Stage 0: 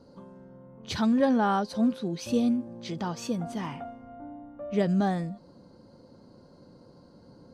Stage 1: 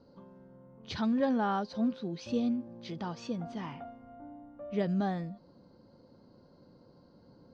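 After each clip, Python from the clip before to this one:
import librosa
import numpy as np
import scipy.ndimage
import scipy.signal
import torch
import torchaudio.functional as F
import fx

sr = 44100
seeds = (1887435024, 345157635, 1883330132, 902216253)

y = scipy.signal.sosfilt(scipy.signal.butter(4, 5400.0, 'lowpass', fs=sr, output='sos'), x)
y = y * librosa.db_to_amplitude(-5.5)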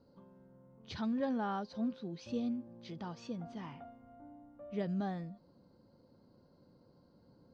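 y = fx.peak_eq(x, sr, hz=82.0, db=2.5, octaves=2.2)
y = y * librosa.db_to_amplitude(-6.5)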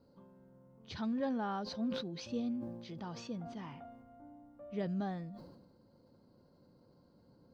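y = fx.sustainer(x, sr, db_per_s=46.0)
y = y * librosa.db_to_amplitude(-1.0)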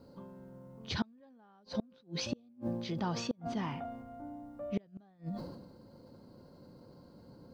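y = fx.gate_flip(x, sr, shuts_db=-31.0, range_db=-34)
y = y * librosa.db_to_amplitude(9.5)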